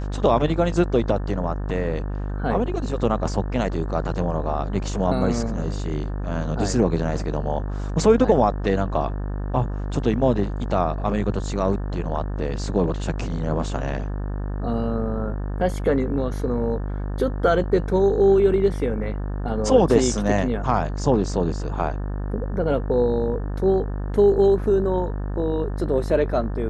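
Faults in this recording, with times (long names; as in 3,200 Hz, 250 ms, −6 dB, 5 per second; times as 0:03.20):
mains buzz 50 Hz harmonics 36 −27 dBFS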